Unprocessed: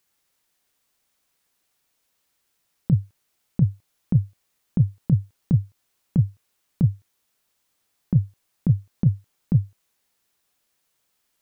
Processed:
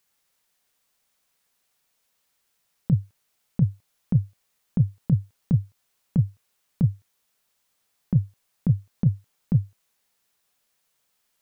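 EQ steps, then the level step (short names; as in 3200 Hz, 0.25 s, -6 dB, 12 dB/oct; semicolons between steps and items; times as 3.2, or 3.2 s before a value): bell 64 Hz -3.5 dB 2 oct; bell 320 Hz -8 dB 0.28 oct; 0.0 dB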